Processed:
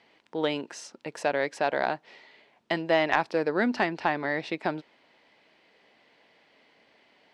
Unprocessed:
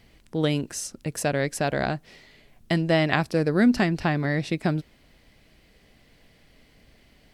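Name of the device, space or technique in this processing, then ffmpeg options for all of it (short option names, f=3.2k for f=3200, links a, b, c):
intercom: -af "highpass=390,lowpass=3.8k,equalizer=f=910:t=o:w=0.25:g=8,asoftclip=type=tanh:threshold=-6.5dB"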